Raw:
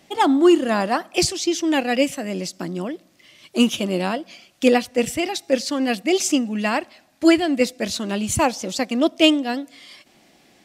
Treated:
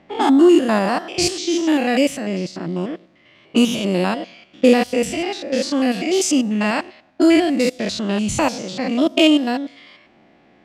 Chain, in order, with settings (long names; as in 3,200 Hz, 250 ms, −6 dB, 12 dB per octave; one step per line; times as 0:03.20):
spectrum averaged block by block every 100 ms
low-pass that shuts in the quiet parts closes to 1,900 Hz, open at −18 dBFS
level +5 dB